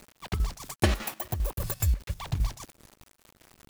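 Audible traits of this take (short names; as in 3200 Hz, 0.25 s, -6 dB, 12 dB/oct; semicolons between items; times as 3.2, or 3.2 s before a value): a quantiser's noise floor 8-bit, dither none; chopped level 5 Hz, depth 65%, duty 70%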